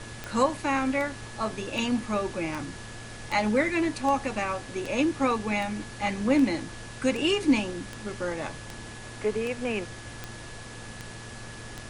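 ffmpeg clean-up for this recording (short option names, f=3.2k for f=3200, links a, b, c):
-af "adeclick=t=4,bandreject=f=114.1:t=h:w=4,bandreject=f=228.2:t=h:w=4,bandreject=f=342.3:t=h:w=4,bandreject=f=456.4:t=h:w=4,bandreject=f=1.7k:w=30,afftdn=nr=30:nf=-41"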